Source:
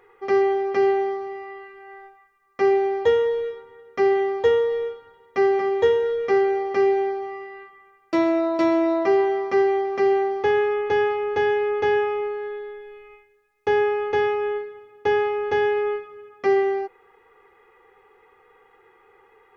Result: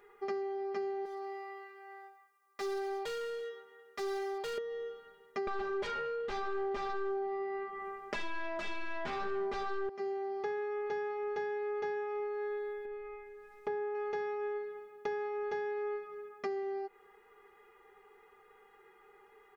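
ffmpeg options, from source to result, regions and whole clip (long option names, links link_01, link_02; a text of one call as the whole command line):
ffmpeg -i in.wav -filter_complex "[0:a]asettb=1/sr,asplit=3[link_01][link_02][link_03];[link_01]atrim=end=1.054[link_04];[link_02]atrim=start=1.05:end=4.58,asetpts=PTS-STARTPTS,afade=type=in:duration=0.004:curve=qsin,afade=type=out:start_time=3.526:duration=0.004:curve=qsin,highpass=frequency=700:poles=1,volume=28.5dB,asoftclip=hard,volume=-28.5dB[link_05];[link_03]atrim=start=4.576[link_06];[link_04][link_05]acrossfade=duration=0.004:curve1=hsin:curve2=qsin[link_07];[link_07][link_06]acrossfade=duration=0.004:curve1=qsin:curve2=hsin,asettb=1/sr,asplit=3[link_08][link_09][link_10];[link_08]atrim=end=5.474[link_11];[link_09]atrim=start=5.47:end=9.89,asetpts=PTS-STARTPTS,afade=type=in:duration=0.004:curve=qsin,afade=type=out:start_time=4.416:duration=0.004:curve=qsin,aeval=exprs='0.398*sin(PI/2*6.31*val(0)/0.398)':channel_layout=same,lowpass=frequency=1300:poles=1[link_12];[link_10]atrim=start=9.886[link_13];[link_11][link_12]acrossfade=duration=0.004:curve1=hsin:curve2=qsin[link_14];[link_14][link_13]acrossfade=duration=0.004:curve1=qsin:curve2=hsin,asettb=1/sr,asplit=3[link_15][link_16][link_17];[link_15]atrim=end=12.854[link_18];[link_16]atrim=start=12.85:end=13.95,asetpts=PTS-STARTPTS,afade=type=in:duration=0.004:curve=qsin,afade=type=out:start_time=1.096:duration=0.004:curve=qsin,lowpass=frequency=1400:poles=1,acompressor=mode=upward:threshold=-33dB:ratio=2.5:attack=3.2:release=140:knee=2.83:detection=peak[link_19];[link_17]atrim=start=13.946[link_20];[link_18][link_19]acrossfade=duration=0.004:curve1=hsin:curve2=qsin[link_21];[link_21][link_20]acrossfade=duration=0.004:curve1=qsin:curve2=hsin,acompressor=threshold=-30dB:ratio=12,highshelf=frequency=4500:gain=8,aecho=1:1:4.9:0.78,volume=-8.5dB" out.wav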